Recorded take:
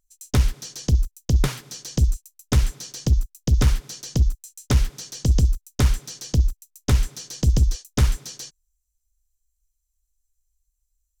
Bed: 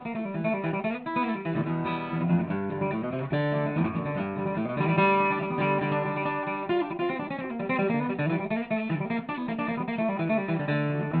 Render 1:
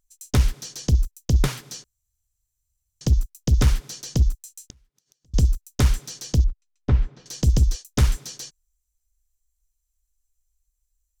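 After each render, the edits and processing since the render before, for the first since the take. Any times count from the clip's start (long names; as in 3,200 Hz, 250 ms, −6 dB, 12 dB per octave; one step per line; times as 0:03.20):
0:01.84–0:03.01: fill with room tone
0:04.60–0:05.34: gate with flip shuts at −26 dBFS, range −41 dB
0:06.44–0:07.26: head-to-tape spacing loss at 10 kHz 40 dB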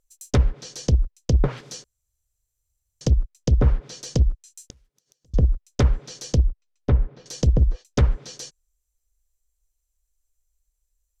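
treble cut that deepens with the level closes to 1,200 Hz, closed at −14.5 dBFS
parametric band 510 Hz +7.5 dB 0.71 octaves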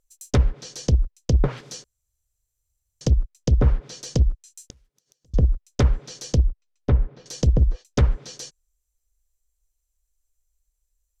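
no processing that can be heard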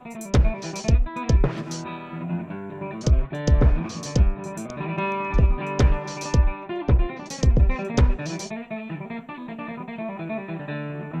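mix in bed −4 dB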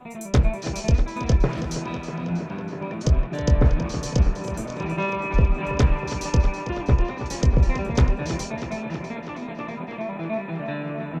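double-tracking delay 24 ms −11.5 dB
on a send: tape delay 323 ms, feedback 87%, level −8.5 dB, low-pass 5,400 Hz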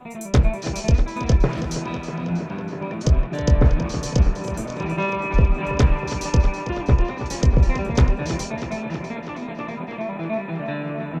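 level +2 dB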